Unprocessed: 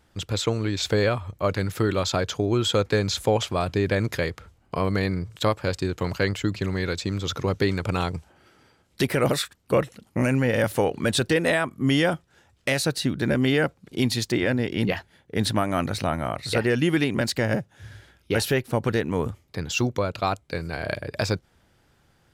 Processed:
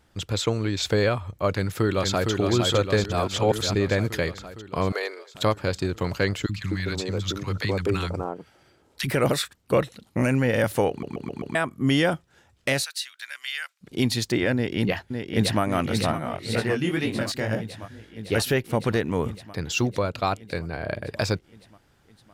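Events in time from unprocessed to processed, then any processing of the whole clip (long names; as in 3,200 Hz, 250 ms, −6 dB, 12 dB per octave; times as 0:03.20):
0:01.51–0:02.31: delay throw 460 ms, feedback 70%, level −4 dB
0:03.04–0:03.75: reverse
0:04.92–0:05.35: elliptic high-pass filter 410 Hz, stop band 60 dB
0:06.46–0:09.11: three-band delay without the direct sound highs, lows, mids 30/250 ms, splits 220/1,100 Hz
0:09.75–0:10.20: parametric band 3,900 Hz +9 dB 0.33 octaves
0:10.90: stutter in place 0.13 s, 5 plays
0:12.84–0:13.81: Bessel high-pass filter 2,200 Hz, order 4
0:14.54–0:15.61: delay throw 560 ms, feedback 75%, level −5.5 dB
0:16.12–0:18.32: chorus effect 2 Hz, delay 17 ms, depth 4.8 ms
0:20.59–0:21.02: high-shelf EQ 2,500 Hz −9.5 dB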